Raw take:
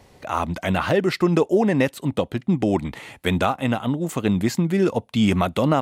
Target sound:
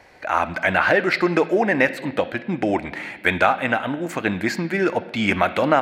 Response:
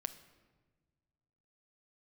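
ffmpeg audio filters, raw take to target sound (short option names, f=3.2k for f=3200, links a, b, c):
-filter_complex "[0:a]asplit=2[a][b];[b]highpass=370,equalizer=f=410:t=q:w=4:g=-8,equalizer=f=1.1k:t=q:w=4:g=-7,equalizer=f=1.6k:t=q:w=4:g=10,equalizer=f=2.3k:t=q:w=4:g=7,equalizer=f=4.3k:t=q:w=4:g=6,lowpass=f=5.8k:w=0.5412,lowpass=f=5.8k:w=1.3066[c];[1:a]atrim=start_sample=2205,lowpass=3.8k[d];[c][d]afir=irnorm=-1:irlink=0,volume=10dB[e];[a][e]amix=inputs=2:normalize=0,volume=-6dB"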